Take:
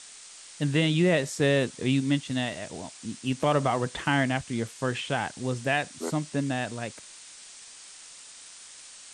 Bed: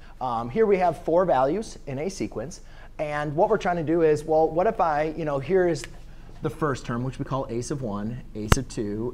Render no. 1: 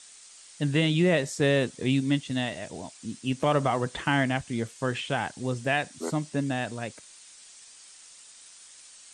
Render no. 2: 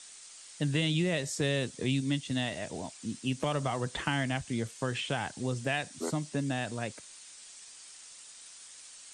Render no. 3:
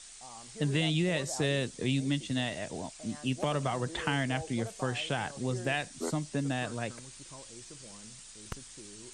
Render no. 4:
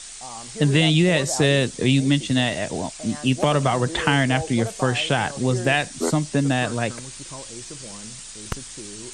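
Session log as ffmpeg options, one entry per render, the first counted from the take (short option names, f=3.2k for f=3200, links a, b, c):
-af "afftdn=nr=6:nf=-48"
-filter_complex "[0:a]acrossover=split=120|3000[a][b][c];[b]acompressor=threshold=-31dB:ratio=3[d];[a][d][c]amix=inputs=3:normalize=0"
-filter_complex "[1:a]volume=-23dB[a];[0:a][a]amix=inputs=2:normalize=0"
-af "volume=11.5dB"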